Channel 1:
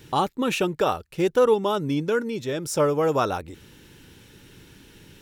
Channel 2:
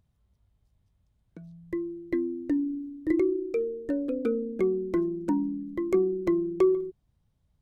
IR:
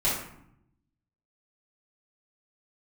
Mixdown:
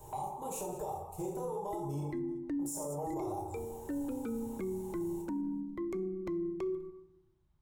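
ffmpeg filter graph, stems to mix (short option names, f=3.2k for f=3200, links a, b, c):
-filter_complex "[0:a]firequalizer=gain_entry='entry(110,0);entry(240,-19);entry(390,6);entry(840,14);entry(1400,-22);entry(3000,-25);entry(5000,-18);entry(7200,-1)':delay=0.05:min_phase=1,acompressor=threshold=-26dB:ratio=2.5,volume=-3dB,asplit=3[a][b][c];[a]atrim=end=2.02,asetpts=PTS-STARTPTS,afade=t=out:st=2.016:d=0.004:c=hsin[d];[b]atrim=start=2.02:end=2.59,asetpts=PTS-STARTPTS,volume=0[e];[c]atrim=start=2.59,asetpts=PTS-STARTPTS,afade=t=in:d=0.004:c=hsin[f];[d][e][f]concat=n=3:v=0:a=1,asplit=3[g][h][i];[h]volume=-4dB[j];[i]volume=-11.5dB[k];[1:a]tiltshelf=f=1.5k:g=5.5,volume=-2dB,asplit=2[l][m];[m]volume=-22.5dB[n];[2:a]atrim=start_sample=2205[o];[j][n]amix=inputs=2:normalize=0[p];[p][o]afir=irnorm=-1:irlink=0[q];[k]aecho=0:1:194|388|582|776|970:1|0.33|0.109|0.0359|0.0119[r];[g][l][q][r]amix=inputs=4:normalize=0,lowshelf=f=770:t=q:w=1.5:g=-7.5,acrossover=split=310|3000[s][t][u];[t]acompressor=threshold=-42dB:ratio=4[v];[s][v][u]amix=inputs=3:normalize=0,alimiter=level_in=6dB:limit=-24dB:level=0:latency=1:release=15,volume=-6dB"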